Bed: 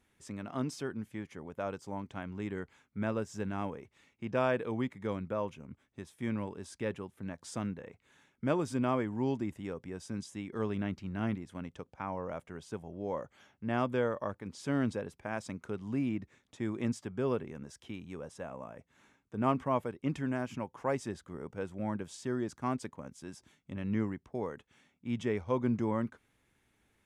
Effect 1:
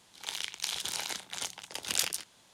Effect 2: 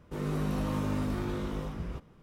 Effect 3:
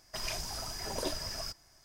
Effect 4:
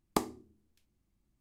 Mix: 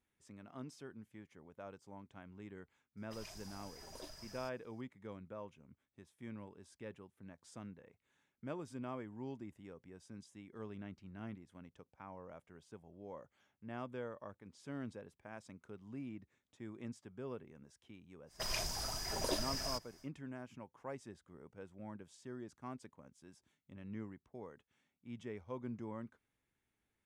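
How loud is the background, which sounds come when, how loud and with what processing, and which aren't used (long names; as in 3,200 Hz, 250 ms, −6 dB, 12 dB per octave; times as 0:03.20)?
bed −13.5 dB
0:02.97: mix in 3 −16 dB
0:18.26: mix in 3 −1.5 dB, fades 0.10 s
not used: 1, 2, 4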